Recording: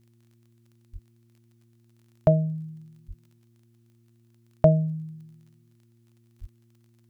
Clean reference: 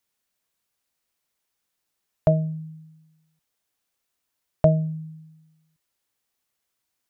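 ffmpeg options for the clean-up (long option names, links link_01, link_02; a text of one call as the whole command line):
ffmpeg -i in.wav -filter_complex "[0:a]adeclick=threshold=4,bandreject=frequency=116:width_type=h:width=4,bandreject=frequency=232:width_type=h:width=4,bandreject=frequency=348:width_type=h:width=4,asplit=3[link_01][link_02][link_03];[link_01]afade=type=out:start_time=0.92:duration=0.02[link_04];[link_02]highpass=frequency=140:width=0.5412,highpass=frequency=140:width=1.3066,afade=type=in:start_time=0.92:duration=0.02,afade=type=out:start_time=1.04:duration=0.02[link_05];[link_03]afade=type=in:start_time=1.04:duration=0.02[link_06];[link_04][link_05][link_06]amix=inputs=3:normalize=0,asplit=3[link_07][link_08][link_09];[link_07]afade=type=out:start_time=3.07:duration=0.02[link_10];[link_08]highpass=frequency=140:width=0.5412,highpass=frequency=140:width=1.3066,afade=type=in:start_time=3.07:duration=0.02,afade=type=out:start_time=3.19:duration=0.02[link_11];[link_09]afade=type=in:start_time=3.19:duration=0.02[link_12];[link_10][link_11][link_12]amix=inputs=3:normalize=0,asplit=3[link_13][link_14][link_15];[link_13]afade=type=out:start_time=6.4:duration=0.02[link_16];[link_14]highpass=frequency=140:width=0.5412,highpass=frequency=140:width=1.3066,afade=type=in:start_time=6.4:duration=0.02,afade=type=out:start_time=6.52:duration=0.02[link_17];[link_15]afade=type=in:start_time=6.52:duration=0.02[link_18];[link_16][link_17][link_18]amix=inputs=3:normalize=0" out.wav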